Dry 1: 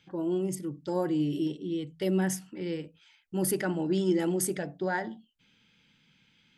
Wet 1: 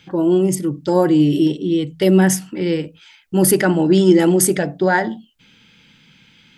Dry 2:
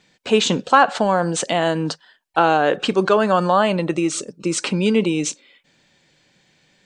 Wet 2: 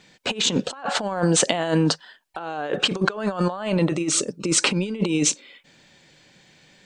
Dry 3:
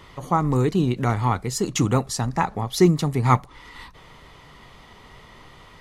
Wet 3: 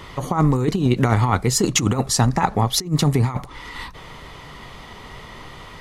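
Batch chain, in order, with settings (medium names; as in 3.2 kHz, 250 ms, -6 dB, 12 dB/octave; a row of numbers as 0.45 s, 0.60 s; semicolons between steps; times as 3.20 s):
compressor with a negative ratio -22 dBFS, ratio -0.5; peak normalisation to -1.5 dBFS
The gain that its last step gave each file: +14.5 dB, 0.0 dB, +5.5 dB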